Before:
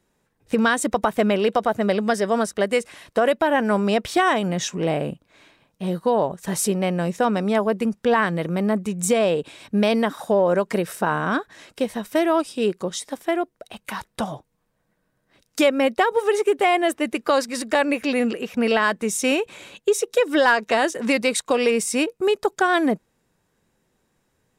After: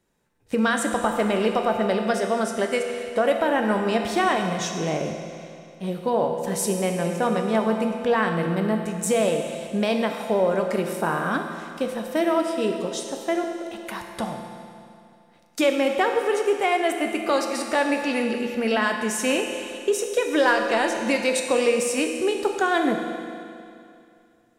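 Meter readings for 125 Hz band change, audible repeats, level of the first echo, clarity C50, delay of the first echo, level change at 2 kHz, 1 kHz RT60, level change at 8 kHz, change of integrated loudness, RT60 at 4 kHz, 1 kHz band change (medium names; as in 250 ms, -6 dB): -2.5 dB, no echo, no echo, 4.5 dB, no echo, -2.0 dB, 2.5 s, -2.0 dB, -2.0 dB, 2.4 s, -2.0 dB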